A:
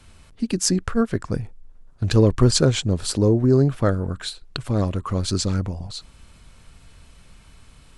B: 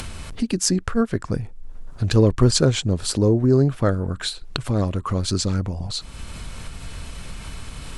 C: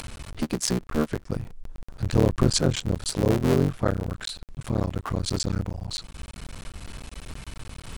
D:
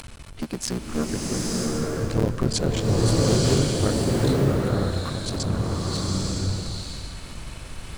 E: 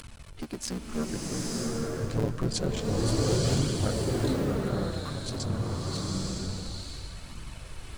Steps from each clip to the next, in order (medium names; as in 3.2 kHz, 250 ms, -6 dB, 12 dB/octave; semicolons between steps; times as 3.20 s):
upward compressor, threshold -19 dBFS
cycle switcher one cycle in 3, muted; trim -3 dB
swelling reverb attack 930 ms, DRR -4.5 dB; trim -3 dB
flange 0.27 Hz, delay 0.6 ms, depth 8.3 ms, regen -43%; trim -2 dB